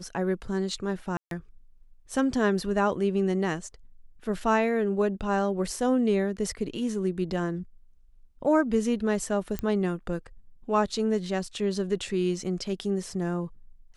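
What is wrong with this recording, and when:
1.17–1.31 s: dropout 142 ms
9.59 s: pop -16 dBFS

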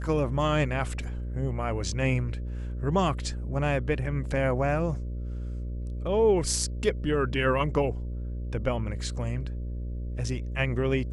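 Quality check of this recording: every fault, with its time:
buzz 60 Hz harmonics 10 -33 dBFS

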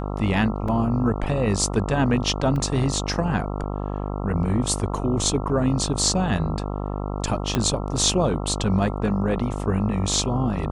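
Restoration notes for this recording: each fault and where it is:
buzz 50 Hz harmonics 27 -28 dBFS
0.68 s: dropout 4.3 ms
2.56 s: dropout 2.3 ms
7.55 s: pop -7 dBFS

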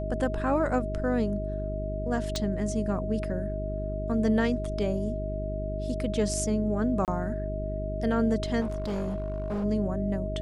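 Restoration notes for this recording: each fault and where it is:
hum 50 Hz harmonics 8 -33 dBFS
whine 630 Hz -34 dBFS
2.36 s: pop -16 dBFS
7.05–7.08 s: dropout 28 ms
8.60–9.65 s: clipped -27 dBFS

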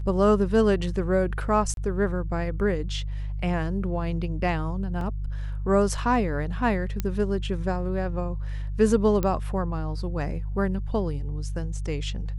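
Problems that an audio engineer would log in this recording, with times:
hum 50 Hz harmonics 3 -30 dBFS
1.74–1.77 s: dropout 32 ms
5.01 s: dropout 2.1 ms
7.00 s: pop -13 dBFS
9.23 s: pop -13 dBFS

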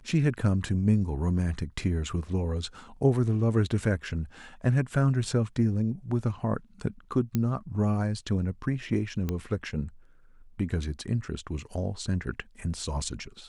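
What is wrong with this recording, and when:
7.35 s: pop -14 dBFS
9.29 s: pop -17 dBFS

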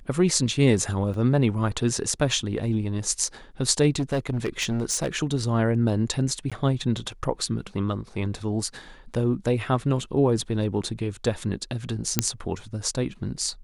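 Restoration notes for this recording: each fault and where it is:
1.14 s: dropout 2.3 ms
3.99–5.09 s: clipped -20.5 dBFS
6.50–6.52 s: dropout 16 ms
12.19 s: pop -2 dBFS

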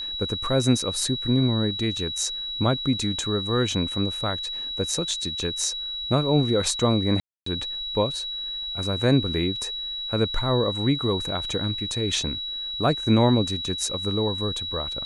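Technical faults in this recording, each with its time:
whine 3.9 kHz -29 dBFS
7.20–7.46 s: dropout 264 ms

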